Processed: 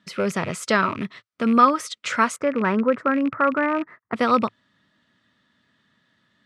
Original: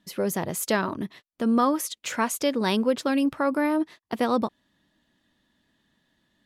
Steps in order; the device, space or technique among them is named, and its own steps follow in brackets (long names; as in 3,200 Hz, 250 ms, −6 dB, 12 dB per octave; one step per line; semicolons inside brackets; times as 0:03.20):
0:02.36–0:04.16: drawn EQ curve 1,900 Hz 0 dB, 3,500 Hz −28 dB, 12,000 Hz −19 dB
car door speaker with a rattle (loose part that buzzes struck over −41 dBFS, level −31 dBFS; loudspeaker in its box 100–8,100 Hz, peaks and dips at 110 Hz +6 dB, 320 Hz −6 dB, 800 Hz −5 dB, 1,300 Hz +10 dB, 2,100 Hz +4 dB, 6,800 Hz −5 dB)
level +3.5 dB